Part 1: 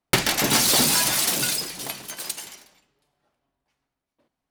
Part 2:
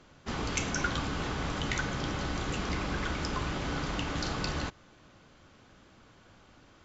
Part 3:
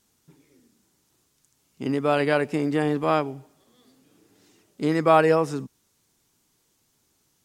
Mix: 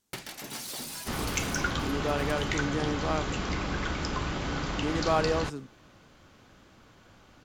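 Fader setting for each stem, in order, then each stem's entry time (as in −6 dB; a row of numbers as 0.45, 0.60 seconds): −19.5, +1.5, −9.0 decibels; 0.00, 0.80, 0.00 seconds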